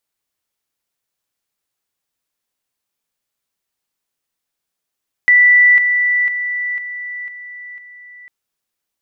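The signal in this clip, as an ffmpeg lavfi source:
-f lavfi -i "aevalsrc='pow(10,(-6-6*floor(t/0.5))/20)*sin(2*PI*1970*t)':d=3:s=44100"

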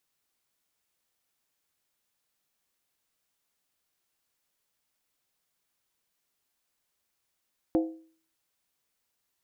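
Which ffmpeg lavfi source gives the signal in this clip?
-f lavfi -i "aevalsrc='0.112*pow(10,-3*t/0.47)*sin(2*PI*323*t)+0.0501*pow(10,-3*t/0.372)*sin(2*PI*514.9*t)+0.0224*pow(10,-3*t/0.322)*sin(2*PI*689.9*t)+0.01*pow(10,-3*t/0.31)*sin(2*PI*741.6*t)+0.00447*pow(10,-3*t/0.289)*sin(2*PI*856.9*t)':d=0.63:s=44100"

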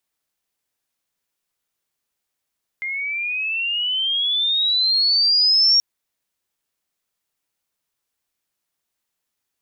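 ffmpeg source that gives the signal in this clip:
-f lavfi -i "aevalsrc='pow(10,(-23.5+12*t/2.98)/20)*sin(2*PI*2100*2.98/log(5600/2100)*(exp(log(5600/2100)*t/2.98)-1))':d=2.98:s=44100"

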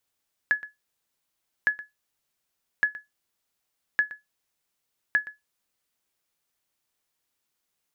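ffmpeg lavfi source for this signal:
-f lavfi -i "aevalsrc='0.224*(sin(2*PI*1700*mod(t,1.16))*exp(-6.91*mod(t,1.16)/0.17)+0.133*sin(2*PI*1700*max(mod(t,1.16)-0.12,0))*exp(-6.91*max(mod(t,1.16)-0.12,0)/0.17))':d=5.8:s=44100"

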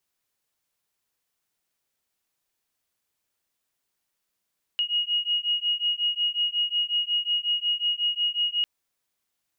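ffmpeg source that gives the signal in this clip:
-f lavfi -i "aevalsrc='0.0501*(sin(2*PI*2880*t)+sin(2*PI*2885.5*t))':d=3.85:s=44100"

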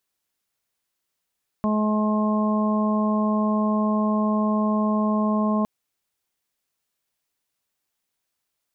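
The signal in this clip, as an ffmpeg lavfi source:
-f lavfi -i "aevalsrc='0.1*sin(2*PI*213*t)+0.0237*sin(2*PI*426*t)+0.0398*sin(2*PI*639*t)+0.0188*sin(2*PI*852*t)+0.0398*sin(2*PI*1065*t)':d=4.01:s=44100"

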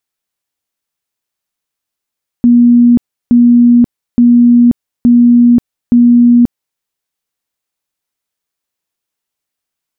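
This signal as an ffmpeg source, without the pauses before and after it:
-f lavfi -i "aevalsrc='0.75*sin(2*PI*240*mod(t,0.87))*lt(mod(t,0.87),128/240)':d=4.35:s=44100"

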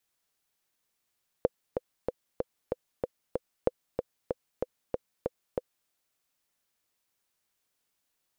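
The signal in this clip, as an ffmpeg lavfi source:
-f lavfi -i "aevalsrc='pow(10,(-9.5-6*gte(mod(t,7*60/189),60/189))/20)*sin(2*PI*504*mod(t,60/189))*exp(-6.91*mod(t,60/189)/0.03)':d=4.44:s=44100"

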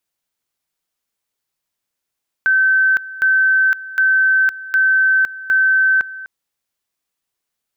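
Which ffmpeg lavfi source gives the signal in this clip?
-f lavfi -i "aevalsrc='pow(10,(-10.5-17.5*gte(mod(t,0.76),0.51))/20)*sin(2*PI*1540*t)':d=3.8:s=44100"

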